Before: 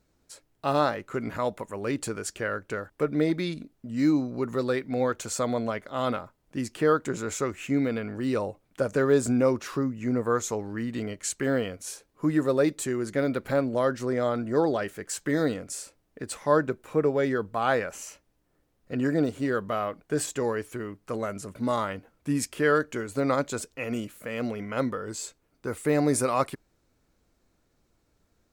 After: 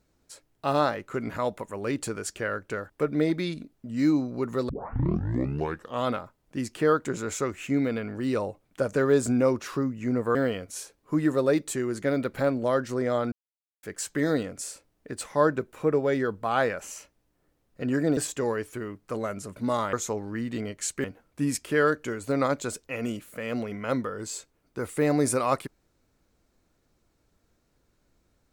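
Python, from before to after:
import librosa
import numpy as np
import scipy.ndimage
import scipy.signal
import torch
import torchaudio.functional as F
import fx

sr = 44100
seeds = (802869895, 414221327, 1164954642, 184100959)

y = fx.edit(x, sr, fx.tape_start(start_s=4.69, length_s=1.36),
    fx.move(start_s=10.35, length_s=1.11, to_s=21.92),
    fx.silence(start_s=14.43, length_s=0.51),
    fx.cut(start_s=19.28, length_s=0.88), tone=tone)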